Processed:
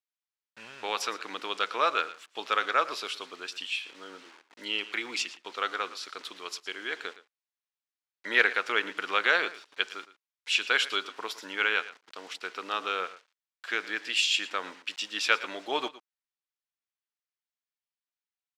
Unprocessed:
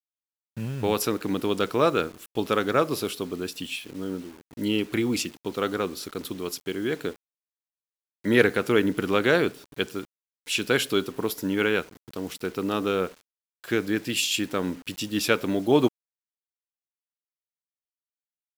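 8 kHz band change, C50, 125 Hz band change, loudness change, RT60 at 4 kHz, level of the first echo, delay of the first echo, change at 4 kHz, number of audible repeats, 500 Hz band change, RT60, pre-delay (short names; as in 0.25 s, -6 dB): -6.0 dB, none, under -30 dB, -3.5 dB, none, -16.5 dB, 0.114 s, +1.0 dB, 1, -12.0 dB, none, none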